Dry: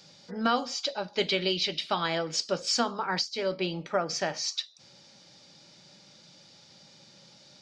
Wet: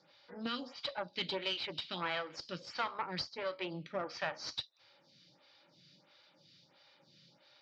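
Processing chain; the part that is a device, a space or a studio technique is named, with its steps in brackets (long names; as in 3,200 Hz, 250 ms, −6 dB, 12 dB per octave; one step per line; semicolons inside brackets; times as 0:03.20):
vibe pedal into a guitar amplifier (phaser with staggered stages 1.5 Hz; tube saturation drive 26 dB, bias 0.7; loudspeaker in its box 110–4,400 Hz, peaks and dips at 210 Hz −9 dB, 420 Hz −8 dB, 710 Hz −5 dB)
level +1 dB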